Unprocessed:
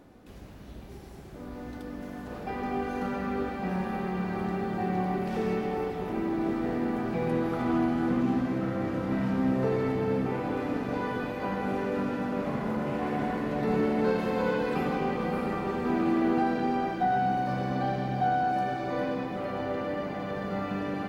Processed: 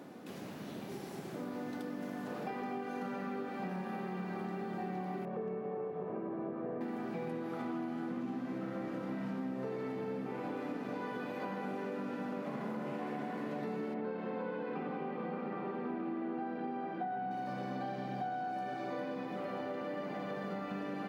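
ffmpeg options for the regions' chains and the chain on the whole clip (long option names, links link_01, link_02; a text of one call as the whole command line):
ffmpeg -i in.wav -filter_complex "[0:a]asettb=1/sr,asplit=3[link_01][link_02][link_03];[link_01]atrim=end=5.254[link_04];[link_02]atrim=start=5.25:end=6.81,asetpts=PTS-STARTPTS,afade=type=in:duration=0.004:curve=qsin,afade=type=out:start_time=1.556:duration=0.004:curve=qsin,lowpass=1100,aecho=1:1:1.8:0.57,atrim=end_sample=68796,asoftclip=type=hard:threshold=-20dB[link_05];[link_03]atrim=start=6.806[link_06];[link_04][link_05]acrossfade=duration=0.004:curve1=hsin:curve2=qsin[link_07];[link_07][link_06]acrossfade=duration=0.004:curve1=qsin:curve2=hsin,asettb=1/sr,asplit=3[link_08][link_09][link_10];[link_08]atrim=end=13.944[link_11];[link_09]atrim=start=13.94:end=17.31,asetpts=PTS-STARTPTS,afade=type=in:duration=0.004:curve=qsin,afade=type=out:start_time=3.366:duration=0.004:curve=qsin,highpass=120,lowpass=3900,aemphasis=mode=reproduction:type=75kf[link_12];[link_10]atrim=start=17.306[link_13];[link_11][link_12]acrossfade=duration=0.004:curve1=hsin:curve2=qsin[link_14];[link_14][link_13]acrossfade=duration=0.004:curve1=qsin:curve2=hsin,highpass=frequency=150:width=0.5412,highpass=frequency=150:width=1.3066,acompressor=threshold=-42dB:ratio=6,volume=4.5dB" out.wav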